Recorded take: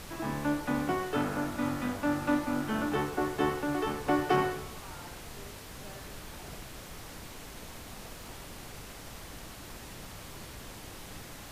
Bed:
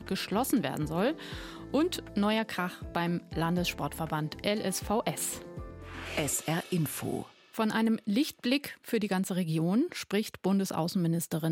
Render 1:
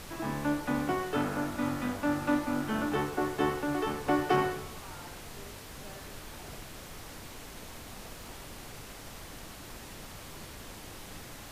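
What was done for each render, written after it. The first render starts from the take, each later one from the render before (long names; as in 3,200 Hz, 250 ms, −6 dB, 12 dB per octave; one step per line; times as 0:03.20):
hum removal 60 Hz, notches 3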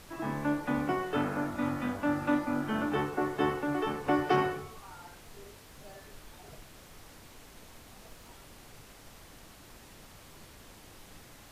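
noise reduction from a noise print 7 dB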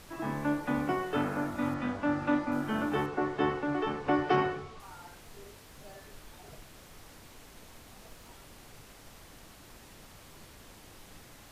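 0:01.74–0:02.52: low-pass filter 6,000 Hz
0:03.06–0:04.80: low-pass filter 5,300 Hz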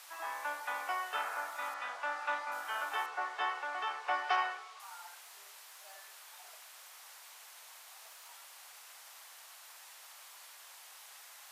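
high-pass filter 770 Hz 24 dB per octave
high-shelf EQ 6,000 Hz +5 dB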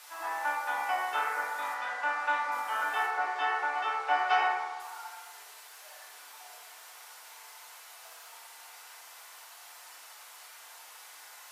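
feedback delay network reverb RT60 1.3 s, low-frequency decay 1×, high-frequency decay 0.35×, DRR −3.5 dB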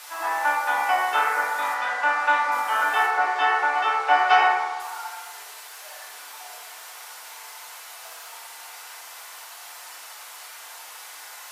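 level +9 dB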